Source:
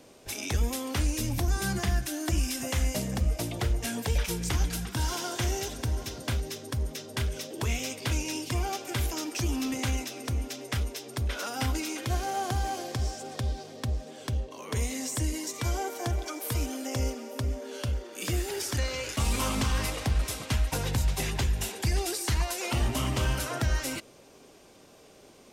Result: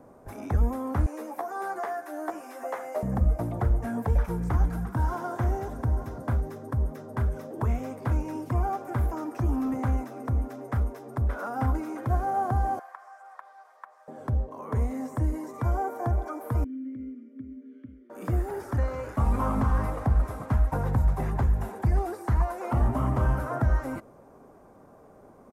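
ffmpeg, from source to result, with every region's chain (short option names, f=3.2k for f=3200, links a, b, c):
-filter_complex "[0:a]asettb=1/sr,asplit=3[a][b][c];[a]atrim=end=1.064[d];[b]atrim=start=1.06:end=3.03,asetpts=PTS-STARTPTS,afade=t=in:d=0.004:c=qsin,afade=t=out:st=1.966:d=0.004:c=qsin,highpass=f=400:w=0.5412,highpass=f=400:w=1.3066,asplit=2[e][f];[f]adelay=13,volume=-3.5dB[g];[e][g]amix=inputs=2:normalize=0,atrim=end_sample=86877[h];[c]atrim=start=3.026[i];[d][h]acrossfade=d=0.004:c1=hsin:c2=qsin[j];[j][i]acrossfade=d=0.004:c1=qsin:c2=hsin,asettb=1/sr,asplit=3[k][l][m];[k]atrim=end=12.794[n];[l]atrim=start=12.79:end=14.08,asetpts=PTS-STARTPTS,afade=t=in:d=0.004:c=qsin,afade=t=out:st=1.286:d=0.004:c=qsin,acrossover=split=2500[o][p];[p]acompressor=threshold=-56dB:ratio=4:attack=1:release=60[q];[o][q]amix=inputs=2:normalize=0,highpass=f=1k:w=0.5412,highpass=f=1k:w=1.3066[r];[m]atrim=start=14.076[s];[n][r]acrossfade=d=0.004:c1=hsin:c2=qsin[t];[t][s]acrossfade=d=0.004:c1=qsin:c2=hsin,asettb=1/sr,asplit=3[u][v][w];[u]atrim=end=16.644[x];[v]atrim=start=16.64:end=18.1,asetpts=PTS-STARTPTS,afade=t=in:d=0.004:c=qsin,afade=t=out:st=1.456:d=0.004:c=qsin,acrossover=split=2800[y][z];[z]acompressor=threshold=-50dB:ratio=4:attack=1:release=60[aa];[y][aa]amix=inputs=2:normalize=0,asplit=3[ab][ac][ad];[ab]bandpass=f=270:t=q:w=8,volume=0dB[ae];[ac]bandpass=f=2.29k:t=q:w=8,volume=-6dB[af];[ad]bandpass=f=3.01k:t=q:w=8,volume=-9dB[ag];[ae][af][ag]amix=inputs=3:normalize=0,equalizer=f=790:t=o:w=0.67:g=-8.5[ah];[w]atrim=start=18.096[ai];[x][ah]acrossfade=d=0.004:c1=hsin:c2=qsin[aj];[aj][ai]acrossfade=d=0.004:c1=qsin:c2=hsin,acrossover=split=4800[ak][al];[al]acompressor=threshold=-41dB:ratio=4:attack=1:release=60[am];[ak][am]amix=inputs=2:normalize=0,firequalizer=gain_entry='entry(240,0);entry(350,-4);entry(730,1);entry(1200,0);entry(2800,-26);entry(4400,-26);entry(11000,-13)':delay=0.05:min_phase=1,volume=4dB"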